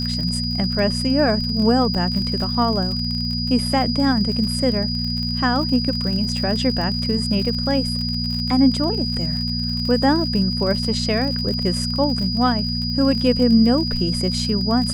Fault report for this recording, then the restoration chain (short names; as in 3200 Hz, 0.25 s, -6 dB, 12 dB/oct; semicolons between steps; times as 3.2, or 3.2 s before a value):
crackle 51/s -26 dBFS
hum 60 Hz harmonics 4 -25 dBFS
tone 4900 Hz -25 dBFS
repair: de-click; notch 4900 Hz, Q 30; de-hum 60 Hz, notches 4